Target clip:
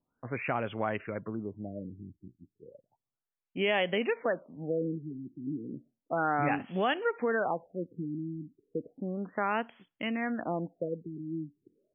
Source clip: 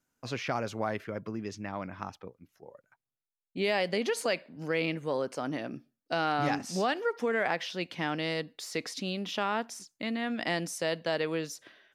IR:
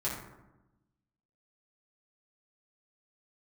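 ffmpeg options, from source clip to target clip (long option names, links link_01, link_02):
-af "crystalizer=i=2:c=0,afftfilt=real='re*lt(b*sr/1024,360*pow(3500/360,0.5+0.5*sin(2*PI*0.33*pts/sr)))':imag='im*lt(b*sr/1024,360*pow(3500/360,0.5+0.5*sin(2*PI*0.33*pts/sr)))':win_size=1024:overlap=0.75"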